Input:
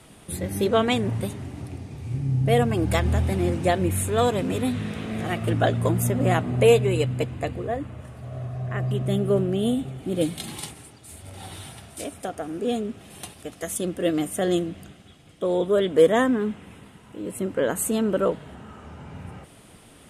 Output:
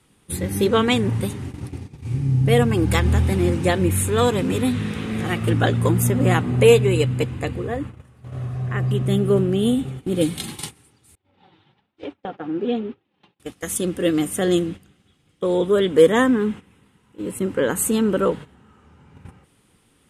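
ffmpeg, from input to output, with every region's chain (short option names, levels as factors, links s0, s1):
-filter_complex "[0:a]asettb=1/sr,asplit=3[s0][s1][s2];[s0]atrim=end=11.154[s3];[s1]atrim=start=11.15:end=13.4,asetpts=PTS-STARTPTS,afade=t=in:d=0.004:c=qsin,afade=t=out:st=2.246:d=0.004:c=qsin,highpass=120,equalizer=f=130:t=q:w=4:g=4,equalizer=f=330:t=q:w=4:g=5,equalizer=f=550:t=q:w=4:g=4,equalizer=f=870:t=q:w=4:g=6,lowpass=f=3700:w=0.5412,lowpass=f=3700:w=1.3066,agate=range=0.0224:threshold=0.0141:ratio=3:release=100:detection=peak,flanger=delay=2.1:depth=4.4:regen=-20:speed=1.1:shape=triangular[s4];[s2]atrim=start=13.396[s5];[s3][s4]acrossfade=d=0.004:c1=hsin:c2=qsin[s6];[s6][s5]acrossfade=d=0.004:c1=qsin:c2=hsin,agate=range=0.2:threshold=0.0178:ratio=16:detection=peak,equalizer=f=650:t=o:w=0.22:g=-14.5,volume=1.68"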